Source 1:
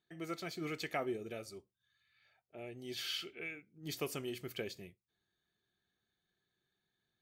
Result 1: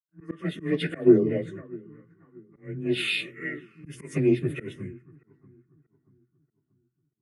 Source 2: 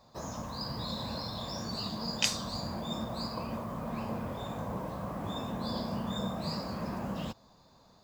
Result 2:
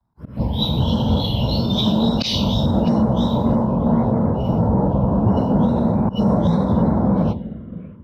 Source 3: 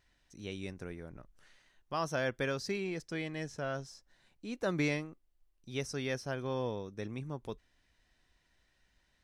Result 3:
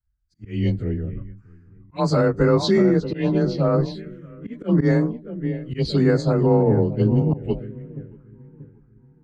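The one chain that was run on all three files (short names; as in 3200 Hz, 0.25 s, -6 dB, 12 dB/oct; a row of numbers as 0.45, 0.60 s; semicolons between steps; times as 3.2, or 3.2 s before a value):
inharmonic rescaling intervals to 92%; high shelf 3000 Hz -7 dB; on a send: darkening echo 0.634 s, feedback 67%, low-pass 1300 Hz, level -11.5 dB; on the sum: auto swell 0.128 s; envelope phaser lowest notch 490 Hz, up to 3000 Hz, full sweep at -34.5 dBFS; low shelf 410 Hz +7 dB; limiter -28.5 dBFS; three-band expander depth 100%; normalise peaks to -6 dBFS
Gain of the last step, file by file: +13.0, +20.0, +18.5 dB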